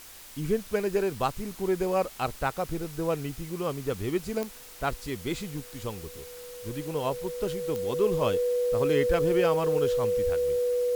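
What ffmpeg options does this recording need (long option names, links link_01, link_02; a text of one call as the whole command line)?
ffmpeg -i in.wav -af "adeclick=threshold=4,bandreject=frequency=490:width=30,afwtdn=0.0045" out.wav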